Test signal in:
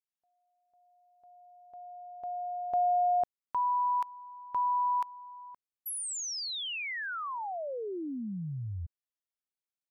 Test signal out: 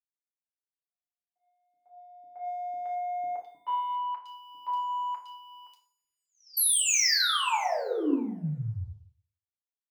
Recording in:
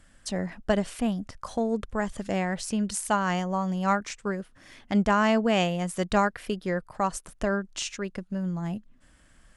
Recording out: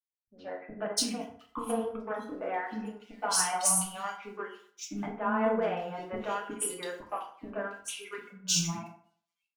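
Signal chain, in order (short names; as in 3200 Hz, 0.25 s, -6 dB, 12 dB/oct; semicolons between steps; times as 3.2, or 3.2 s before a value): HPF 180 Hz 12 dB/oct; notch 7600 Hz, Q 7.1; spectral noise reduction 20 dB; compressor 12:1, threshold -33 dBFS; sample leveller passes 2; three bands offset in time lows, mids, highs 0.12/0.71 s, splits 380/2900 Hz; FDN reverb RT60 0.82 s, low-frequency decay 0.9×, high-frequency decay 0.55×, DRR -2 dB; three-band expander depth 100%; gain -5 dB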